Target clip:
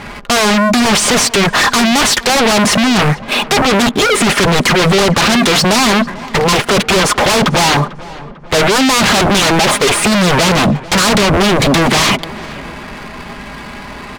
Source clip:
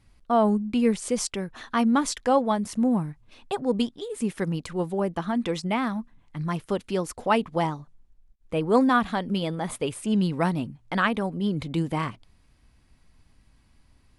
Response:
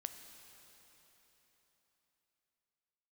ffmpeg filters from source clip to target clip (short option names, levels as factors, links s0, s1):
-filter_complex "[0:a]aecho=1:1:4.9:0.5,asplit=2[s0][s1];[s1]highpass=f=720:p=1,volume=44.7,asoftclip=type=tanh:threshold=0.447[s2];[s0][s2]amix=inputs=2:normalize=0,lowpass=f=1800:p=1,volume=0.501,aeval=exprs='0.422*sin(PI/2*5.01*val(0)/0.422)':c=same,adynamicsmooth=sensitivity=6:basefreq=1000,asplit=2[s3][s4];[s4]adelay=446,lowpass=f=2300:p=1,volume=0.126,asplit=2[s5][s6];[s6]adelay=446,lowpass=f=2300:p=1,volume=0.55,asplit=2[s7][s8];[s8]adelay=446,lowpass=f=2300:p=1,volume=0.55,asplit=2[s9][s10];[s10]adelay=446,lowpass=f=2300:p=1,volume=0.55,asplit=2[s11][s12];[s12]adelay=446,lowpass=f=2300:p=1,volume=0.55[s13];[s3][s5][s7][s9][s11][s13]amix=inputs=6:normalize=0"